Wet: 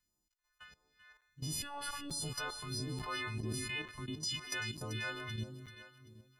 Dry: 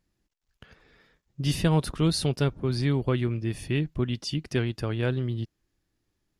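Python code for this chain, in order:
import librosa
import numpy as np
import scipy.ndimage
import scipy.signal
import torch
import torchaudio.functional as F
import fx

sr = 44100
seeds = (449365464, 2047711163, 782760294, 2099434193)

y = fx.freq_snap(x, sr, grid_st=3)
y = fx.peak_eq(y, sr, hz=1100.0, db=14.0, octaves=1.7)
y = fx.rev_schroeder(y, sr, rt60_s=1.1, comb_ms=25, drr_db=20.0)
y = fx.level_steps(y, sr, step_db=15)
y = fx.robotise(y, sr, hz=287.0, at=(1.62, 2.11))
y = fx.high_shelf(y, sr, hz=5200.0, db=7.0, at=(4.34, 5.13))
y = fx.echo_feedback(y, sr, ms=387, feedback_pct=40, wet_db=-10.5)
y = fx.phaser_stages(y, sr, stages=2, low_hz=140.0, high_hz=1900.0, hz=1.5, feedback_pct=40)
y = fx.buffer_crackle(y, sr, first_s=0.32, period_s=0.89, block=256, kind='zero')
y = fx.sustainer(y, sr, db_per_s=26.0, at=(2.87, 3.82))
y = y * 10.0 ** (-8.0 / 20.0)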